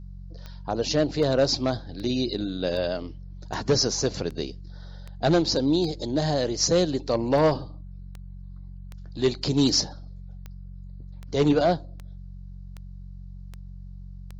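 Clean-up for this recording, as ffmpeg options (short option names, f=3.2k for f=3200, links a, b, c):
-af "adeclick=t=4,bandreject=f=46:t=h:w=4,bandreject=f=92:t=h:w=4,bandreject=f=138:t=h:w=4,bandreject=f=184:t=h:w=4"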